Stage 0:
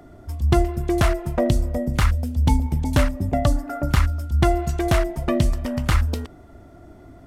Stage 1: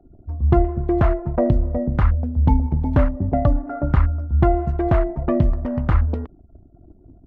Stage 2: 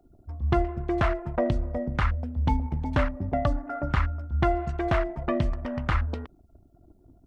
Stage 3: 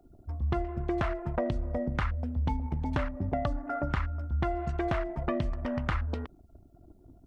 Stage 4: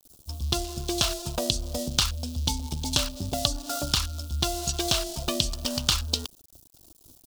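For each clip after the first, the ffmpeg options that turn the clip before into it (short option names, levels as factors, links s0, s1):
-af "anlmdn=1,lowpass=1200,volume=1.26"
-af "tiltshelf=f=1300:g=-9"
-af "acompressor=threshold=0.0398:ratio=4,volume=1.12"
-af "aeval=exprs='sgn(val(0))*max(abs(val(0))-0.0015,0)':c=same,aexciter=amount=15.8:drive=9.9:freq=3300"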